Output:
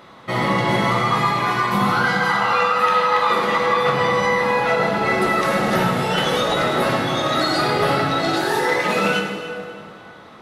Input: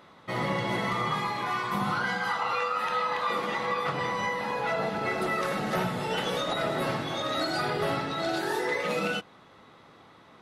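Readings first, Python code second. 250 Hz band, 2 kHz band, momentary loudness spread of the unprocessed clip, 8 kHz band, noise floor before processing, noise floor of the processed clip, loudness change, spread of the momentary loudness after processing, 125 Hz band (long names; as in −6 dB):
+10.5 dB, +10.5 dB, 2 LU, +10.0 dB, −55 dBFS, −42 dBFS, +10.5 dB, 3 LU, +10.5 dB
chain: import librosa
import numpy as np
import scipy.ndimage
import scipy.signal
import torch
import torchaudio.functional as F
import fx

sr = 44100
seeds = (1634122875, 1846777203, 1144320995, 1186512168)

y = fx.rev_plate(x, sr, seeds[0], rt60_s=2.5, hf_ratio=0.7, predelay_ms=0, drr_db=2.5)
y = y * librosa.db_to_amplitude(8.5)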